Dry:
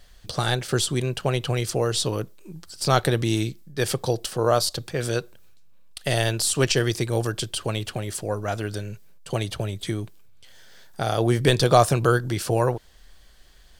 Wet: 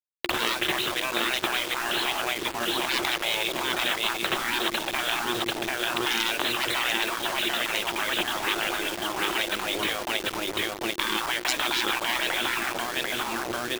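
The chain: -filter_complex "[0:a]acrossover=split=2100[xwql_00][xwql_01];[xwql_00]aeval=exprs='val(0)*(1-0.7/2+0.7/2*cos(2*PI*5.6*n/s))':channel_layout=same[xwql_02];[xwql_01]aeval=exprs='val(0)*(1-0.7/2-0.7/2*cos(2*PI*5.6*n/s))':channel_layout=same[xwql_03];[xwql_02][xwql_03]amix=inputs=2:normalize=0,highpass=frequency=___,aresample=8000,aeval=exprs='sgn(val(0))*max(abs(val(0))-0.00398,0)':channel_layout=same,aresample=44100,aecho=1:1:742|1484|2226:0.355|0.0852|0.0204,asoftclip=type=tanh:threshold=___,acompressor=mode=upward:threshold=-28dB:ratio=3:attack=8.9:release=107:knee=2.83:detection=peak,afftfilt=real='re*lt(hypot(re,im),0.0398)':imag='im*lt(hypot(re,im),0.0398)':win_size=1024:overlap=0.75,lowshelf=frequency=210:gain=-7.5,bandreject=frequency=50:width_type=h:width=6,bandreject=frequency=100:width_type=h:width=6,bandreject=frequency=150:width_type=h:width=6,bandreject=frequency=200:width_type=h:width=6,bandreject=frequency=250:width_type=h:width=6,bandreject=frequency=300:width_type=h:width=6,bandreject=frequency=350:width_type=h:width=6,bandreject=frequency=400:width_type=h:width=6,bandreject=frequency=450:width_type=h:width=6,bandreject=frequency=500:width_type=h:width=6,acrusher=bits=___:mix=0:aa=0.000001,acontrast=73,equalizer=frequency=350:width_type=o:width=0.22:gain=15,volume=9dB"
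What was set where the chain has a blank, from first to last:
80, -18dB, 7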